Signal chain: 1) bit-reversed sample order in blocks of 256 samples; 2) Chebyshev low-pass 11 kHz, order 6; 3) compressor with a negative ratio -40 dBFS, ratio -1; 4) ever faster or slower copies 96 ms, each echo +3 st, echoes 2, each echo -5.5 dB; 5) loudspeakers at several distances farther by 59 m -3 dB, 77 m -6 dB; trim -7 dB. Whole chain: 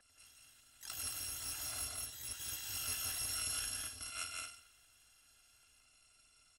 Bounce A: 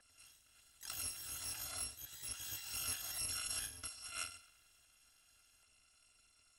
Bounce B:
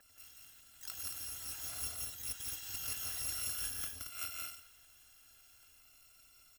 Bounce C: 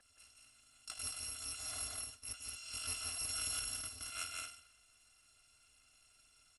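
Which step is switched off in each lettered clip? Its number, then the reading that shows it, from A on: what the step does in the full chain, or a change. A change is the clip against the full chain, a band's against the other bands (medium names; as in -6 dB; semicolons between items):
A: 5, echo-to-direct -1.0 dB to none; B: 2, 125 Hz band +1.5 dB; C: 4, loudness change -1.0 LU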